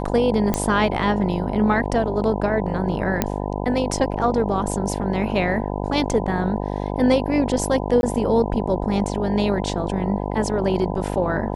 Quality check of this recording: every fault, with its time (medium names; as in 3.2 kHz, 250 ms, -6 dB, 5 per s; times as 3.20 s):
buzz 50 Hz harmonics 20 -26 dBFS
0.54 s: pop -6 dBFS
3.22 s: pop -4 dBFS
8.01–8.03 s: dropout 21 ms